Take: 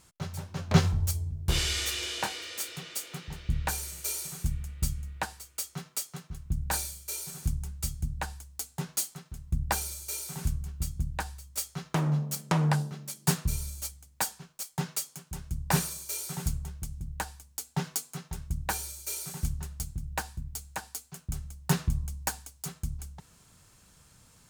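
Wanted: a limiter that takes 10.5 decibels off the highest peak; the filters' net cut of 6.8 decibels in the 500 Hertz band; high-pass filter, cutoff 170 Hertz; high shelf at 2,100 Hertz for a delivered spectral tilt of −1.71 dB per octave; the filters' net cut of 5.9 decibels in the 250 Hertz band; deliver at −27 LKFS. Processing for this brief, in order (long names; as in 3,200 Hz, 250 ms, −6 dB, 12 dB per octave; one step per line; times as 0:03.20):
high-pass filter 170 Hz
parametric band 250 Hz −4.5 dB
parametric band 500 Hz −8 dB
high-shelf EQ 2,100 Hz +4.5 dB
level +7.5 dB
brickwall limiter −12.5 dBFS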